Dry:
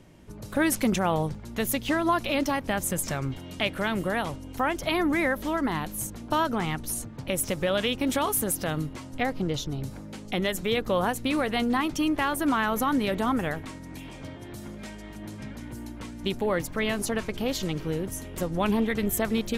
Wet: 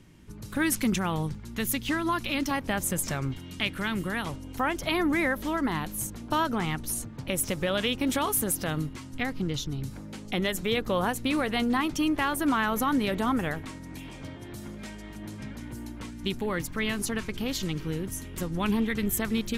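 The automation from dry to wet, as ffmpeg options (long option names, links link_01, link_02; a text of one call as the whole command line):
ffmpeg -i in.wav -af "asetnsamples=nb_out_samples=441:pad=0,asendcmd='2.51 equalizer g -3;3.33 equalizer g -11.5;4.26 equalizer g -3.5;8.89 equalizer g -10.5;9.96 equalizer g -3;16.1 equalizer g -9.5',equalizer=frequency=620:width_type=o:width=1:gain=-11" out.wav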